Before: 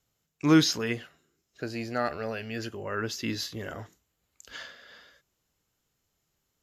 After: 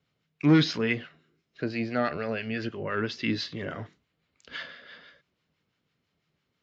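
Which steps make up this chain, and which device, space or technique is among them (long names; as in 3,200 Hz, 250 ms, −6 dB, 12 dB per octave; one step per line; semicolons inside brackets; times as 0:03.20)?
guitar amplifier with harmonic tremolo (two-band tremolo in antiphase 6 Hz, depth 50%, crossover 880 Hz; soft clipping −20 dBFS, distortion −12 dB; loudspeaker in its box 88–4,400 Hz, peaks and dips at 160 Hz +6 dB, 250 Hz +3 dB, 820 Hz −4 dB, 2,200 Hz +4 dB)
level +5 dB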